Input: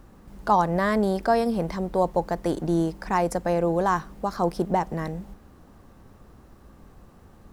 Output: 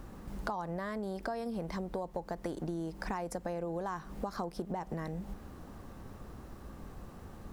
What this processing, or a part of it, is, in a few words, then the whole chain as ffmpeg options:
serial compression, leveller first: -af "acompressor=threshold=-26dB:ratio=2.5,acompressor=threshold=-37dB:ratio=6,volume=2.5dB"

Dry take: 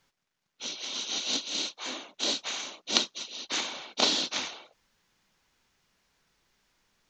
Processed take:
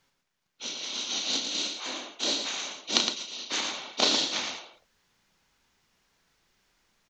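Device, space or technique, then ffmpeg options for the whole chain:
slapback doubling: -filter_complex "[0:a]asplit=3[link_01][link_02][link_03];[link_02]adelay=33,volume=-8dB[link_04];[link_03]adelay=113,volume=-6dB[link_05];[link_01][link_04][link_05]amix=inputs=3:normalize=0"

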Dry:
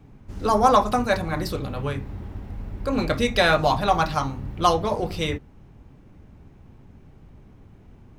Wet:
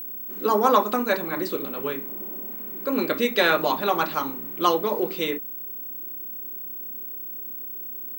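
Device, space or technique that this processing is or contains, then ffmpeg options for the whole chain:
old television with a line whistle: -filter_complex "[0:a]highpass=frequency=220:width=0.5412,highpass=frequency=220:width=1.3066,equalizer=frequency=380:width_type=q:width=4:gain=6,equalizer=frequency=720:width_type=q:width=4:gain=-8,equalizer=frequency=5300:width_type=q:width=4:gain=-9,lowpass=frequency=8600:width=0.5412,lowpass=frequency=8600:width=1.3066,aeval=exprs='val(0)+0.0251*sin(2*PI*15734*n/s)':channel_layout=same,asettb=1/sr,asplit=3[link_01][link_02][link_03];[link_01]atrim=end=2.074[link_04];[link_02]atrim=start=2.07:end=2.51,asetpts=PTS-STARTPTS,afade=type=in:duration=0.004:curve=qsin,afade=type=out:start_time=0.436:duration=0.004:curve=qsin,equalizer=frequency=630:width_type=o:width=0.67:gain=6,equalizer=frequency=1600:width_type=o:width=0.67:gain=-5,equalizer=frequency=4000:width_type=o:width=0.67:gain=-7,equalizer=frequency=10000:width_type=o:width=0.67:gain=6[link_05];[link_03]atrim=start=2.506[link_06];[link_04][link_05]acrossfade=duration=0.004:curve1=hsin:curve2=qsin[link_07];[link_07][link_06]acrossfade=duration=0.004:curve1=qsin:curve2=hsin"

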